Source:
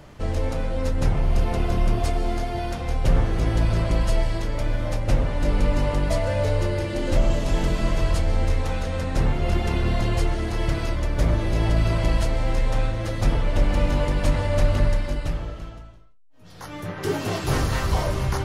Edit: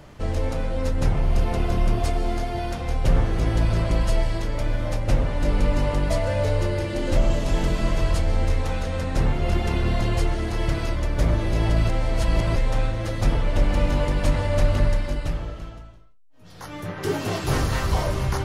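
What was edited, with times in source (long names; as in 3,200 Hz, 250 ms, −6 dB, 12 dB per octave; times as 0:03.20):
0:11.89–0:12.56: reverse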